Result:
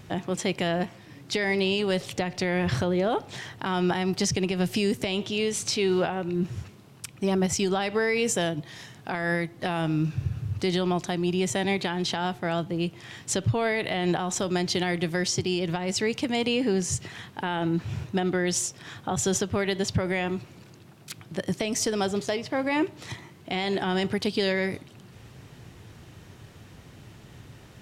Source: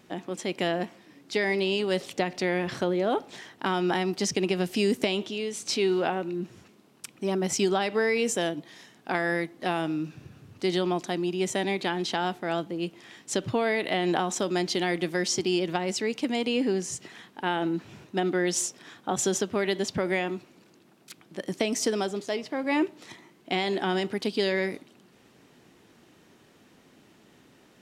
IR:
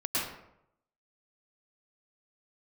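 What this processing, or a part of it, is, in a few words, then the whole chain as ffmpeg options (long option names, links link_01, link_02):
car stereo with a boomy subwoofer: -af "lowshelf=frequency=160:width_type=q:width=1.5:gain=13.5,alimiter=limit=-22.5dB:level=0:latency=1:release=380,volume=6.5dB"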